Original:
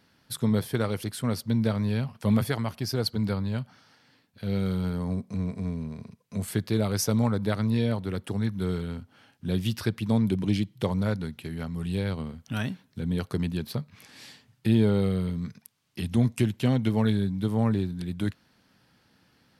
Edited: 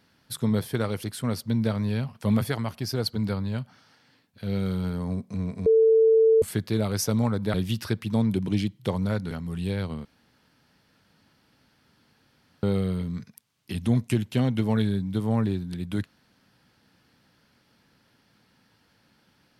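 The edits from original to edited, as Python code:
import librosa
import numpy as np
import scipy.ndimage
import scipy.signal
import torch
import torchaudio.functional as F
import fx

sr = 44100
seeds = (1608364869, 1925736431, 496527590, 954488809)

y = fx.edit(x, sr, fx.bleep(start_s=5.66, length_s=0.76, hz=446.0, db=-14.5),
    fx.cut(start_s=7.54, length_s=1.96),
    fx.cut(start_s=11.27, length_s=0.32),
    fx.room_tone_fill(start_s=12.33, length_s=2.58), tone=tone)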